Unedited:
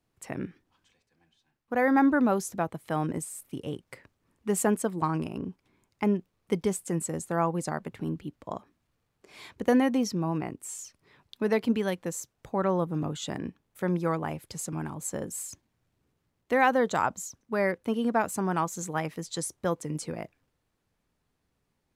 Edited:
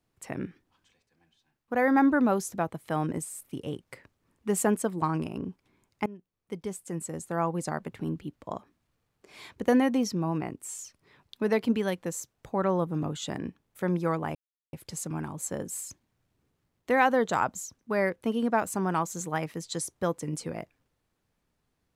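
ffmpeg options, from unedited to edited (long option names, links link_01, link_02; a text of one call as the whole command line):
ffmpeg -i in.wav -filter_complex "[0:a]asplit=3[link_01][link_02][link_03];[link_01]atrim=end=6.06,asetpts=PTS-STARTPTS,afade=type=out:start_time=6.056:duration=0.004:curve=hsin:silence=0.0841395[link_04];[link_02]atrim=start=6.06:end=14.35,asetpts=PTS-STARTPTS,afade=type=in:duration=1.7:silence=0.0841395,afade=type=out:start_time=8.286:duration=0.004:curve=hsin,apad=pad_dur=0.38[link_05];[link_03]atrim=start=14.35,asetpts=PTS-STARTPTS,afade=type=in:duration=0.004:curve=hsin[link_06];[link_04][link_05][link_06]concat=n=3:v=0:a=1" out.wav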